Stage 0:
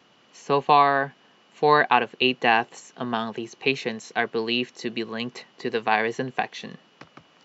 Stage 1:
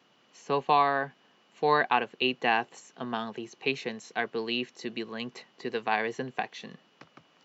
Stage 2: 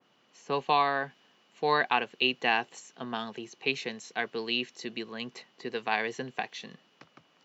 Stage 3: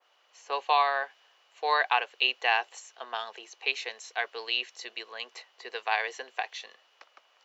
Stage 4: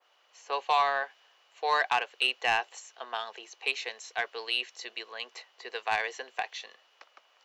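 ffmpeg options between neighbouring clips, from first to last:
-af "highpass=100,volume=0.501"
-af "adynamicequalizer=threshold=0.01:dfrequency=2000:dqfactor=0.7:tfrequency=2000:tqfactor=0.7:attack=5:release=100:ratio=0.375:range=3:mode=boostabove:tftype=highshelf,volume=0.75"
-af "highpass=f=540:w=0.5412,highpass=f=540:w=1.3066,volume=1.19"
-af "asoftclip=type=tanh:threshold=0.188"

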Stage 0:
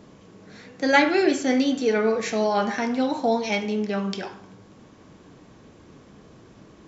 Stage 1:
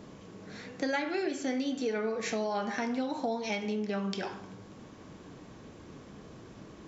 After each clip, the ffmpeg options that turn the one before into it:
-af "acompressor=threshold=0.0316:ratio=5"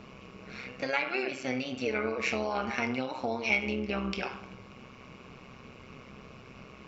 -af "superequalizer=6b=0.355:10b=1.78:12b=3.55:15b=0.501,tremolo=f=130:d=0.71,volume=1.41"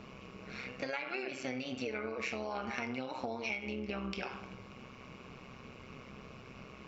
-af "acompressor=threshold=0.0224:ratio=6,volume=0.841"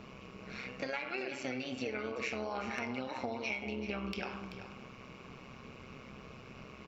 -af "asoftclip=type=hard:threshold=0.0794,aecho=1:1:384:0.282"

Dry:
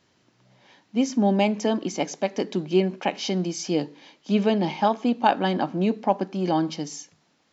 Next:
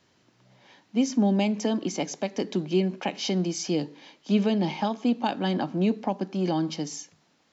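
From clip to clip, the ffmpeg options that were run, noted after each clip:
-filter_complex "[0:a]acrossover=split=300|3000[s0][s1][s2];[s1]acompressor=threshold=0.0355:ratio=3[s3];[s0][s3][s2]amix=inputs=3:normalize=0"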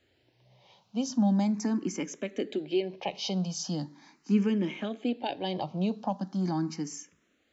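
-filter_complex "[0:a]lowshelf=f=75:g=8.5,asplit=2[s0][s1];[s1]afreqshift=0.4[s2];[s0][s2]amix=inputs=2:normalize=1,volume=0.794"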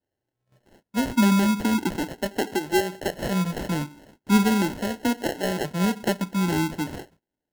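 -af "acrusher=samples=37:mix=1:aa=0.000001,agate=range=0.0891:threshold=0.00112:ratio=16:detection=peak,volume=2"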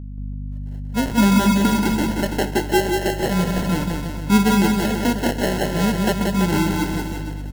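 -filter_complex "[0:a]aeval=exprs='val(0)+0.02*(sin(2*PI*50*n/s)+sin(2*PI*2*50*n/s)/2+sin(2*PI*3*50*n/s)/3+sin(2*PI*4*50*n/s)/4+sin(2*PI*5*50*n/s)/5)':c=same,asplit=2[s0][s1];[s1]aecho=0:1:180|333|463|573.6|667.6:0.631|0.398|0.251|0.158|0.1[s2];[s0][s2]amix=inputs=2:normalize=0,volume=1.41"

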